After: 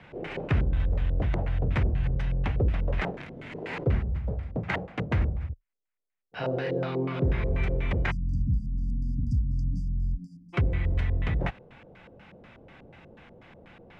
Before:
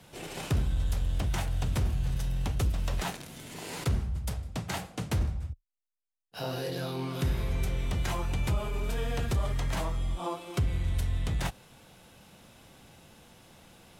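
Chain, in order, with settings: LFO low-pass square 4.1 Hz 500–2100 Hz; spectral delete 8.11–10.54, 280–4600 Hz; gain +3 dB

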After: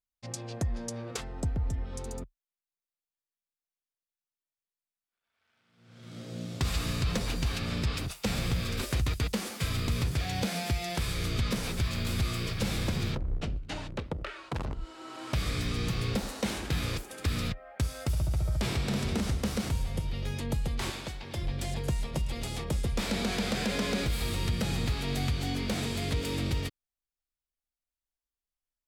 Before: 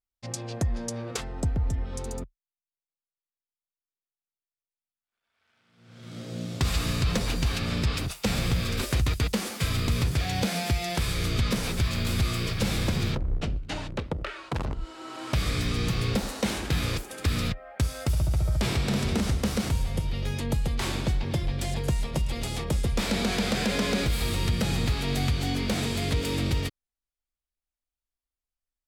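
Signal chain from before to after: 20.9–21.37 low shelf 380 Hz -11.5 dB; gain -4 dB

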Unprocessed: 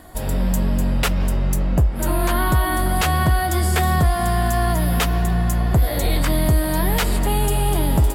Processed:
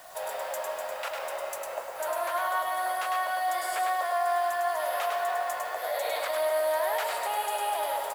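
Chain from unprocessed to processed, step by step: elliptic high-pass 570 Hz, stop band 70 dB; high shelf 2300 Hz -10.5 dB; in parallel at -0.5 dB: negative-ratio compressor -29 dBFS, ratio -0.5; on the sum: limiter -17 dBFS, peak gain reduction 6.5 dB; requantised 8-bit, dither triangular; echo 0.103 s -4 dB; on a send at -12.5 dB: reverb RT60 2.9 s, pre-delay 0.152 s; on the sum: gain -6 dB

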